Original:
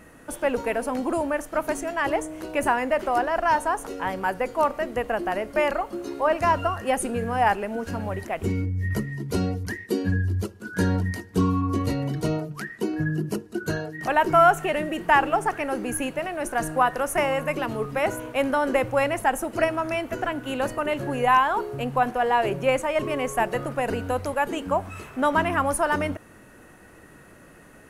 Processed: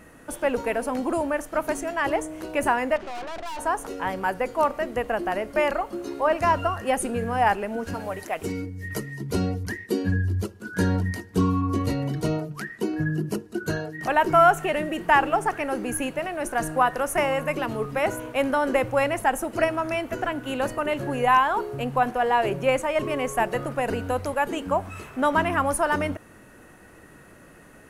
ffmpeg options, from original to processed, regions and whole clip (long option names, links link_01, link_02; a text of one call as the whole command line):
ffmpeg -i in.wav -filter_complex "[0:a]asettb=1/sr,asplit=3[link_01][link_02][link_03];[link_01]atrim=end=2.964[link_04];[link_02]atrim=start=2.96:end=3.59,asetpts=PTS-STARTPTS,afade=type=in:duration=0.004:curve=qsin,afade=type=out:start_time=0.626:duration=0.004:curve=qsin,lowpass=5400,aeval=exprs='(tanh(44.7*val(0)+0.7)-tanh(0.7))/44.7':channel_layout=same[link_05];[link_03]atrim=start=3.586[link_06];[link_04][link_05]acrossfade=duration=0.004:curve1=hsin:curve2=qsin[link_07];[link_07][link_06]acrossfade=duration=0.004:curve1=qsin:curve2=hsin,asettb=1/sr,asplit=3[link_08][link_09][link_10];[link_08]atrim=end=7.944[link_11];[link_09]atrim=start=7.94:end=9.21,asetpts=PTS-STARTPTS,afade=type=in:duration=0.004:curve=qsin,afade=type=out:start_time=1.266:duration=0.004:curve=qsin,bass=frequency=250:gain=-8,treble=frequency=4000:gain=5,aecho=1:1:6.6:0.35,atrim=end_sample=56007[link_12];[link_10]atrim=start=9.206[link_13];[link_11][link_12]acrossfade=duration=0.004:curve1=hsin:curve2=qsin[link_14];[link_14][link_13]acrossfade=duration=0.004:curve1=qsin:curve2=hsin" out.wav